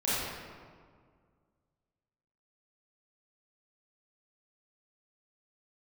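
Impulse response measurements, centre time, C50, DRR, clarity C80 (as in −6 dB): 133 ms, −5.0 dB, −11.0 dB, −1.5 dB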